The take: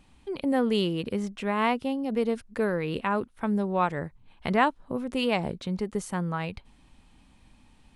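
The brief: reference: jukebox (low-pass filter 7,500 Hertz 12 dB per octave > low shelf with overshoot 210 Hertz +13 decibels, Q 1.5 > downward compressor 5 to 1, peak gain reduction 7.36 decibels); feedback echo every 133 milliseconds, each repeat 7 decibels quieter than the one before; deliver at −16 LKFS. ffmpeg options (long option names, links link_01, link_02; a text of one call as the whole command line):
ffmpeg -i in.wav -af "lowpass=7500,lowshelf=frequency=210:width_type=q:width=1.5:gain=13,aecho=1:1:133|266|399|532|665:0.447|0.201|0.0905|0.0407|0.0183,acompressor=threshold=-23dB:ratio=5,volume=11.5dB" out.wav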